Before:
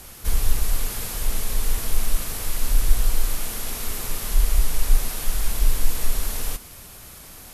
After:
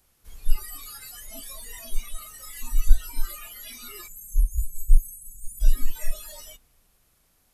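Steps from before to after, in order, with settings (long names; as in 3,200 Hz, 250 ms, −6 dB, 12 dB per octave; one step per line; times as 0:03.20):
time-frequency box erased 0:04.08–0:05.60, 220–6,100 Hz
spring reverb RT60 2.9 s, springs 45/57 ms, chirp 75 ms, DRR 13 dB
noise reduction from a noise print of the clip's start 26 dB
level +2.5 dB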